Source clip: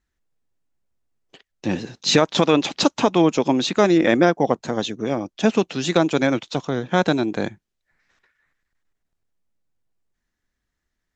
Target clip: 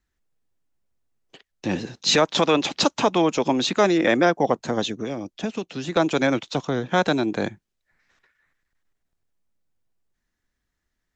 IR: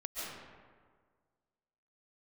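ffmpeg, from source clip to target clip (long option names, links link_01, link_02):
-filter_complex "[0:a]asettb=1/sr,asplit=3[link_01][link_02][link_03];[link_01]atrim=end=4.964[link_04];[link_02]atrim=start=4.96:end=5.97,asetpts=PTS-STARTPTS,afade=type=in:duration=0.004:curve=qsin,afade=type=out:start_time=1.006:duration=0.004:curve=qsin,acrossover=split=630|2000[link_05][link_06][link_07];[link_05]acompressor=threshold=-27dB:ratio=4[link_08];[link_06]acompressor=threshold=-41dB:ratio=4[link_09];[link_07]acompressor=threshold=-41dB:ratio=4[link_10];[link_08][link_09][link_10]amix=inputs=3:normalize=0[link_11];[link_03]atrim=start=5.966[link_12];[link_04][link_11]acrossfade=duration=0.004:curve1=hsin:curve2=qsin[link_13];[link_13][link_12]acrossfade=duration=0.004:curve1=qsin:curve2=hsin,acrossover=split=450|720[link_14][link_15][link_16];[link_14]alimiter=limit=-18dB:level=0:latency=1[link_17];[link_17][link_15][link_16]amix=inputs=3:normalize=0"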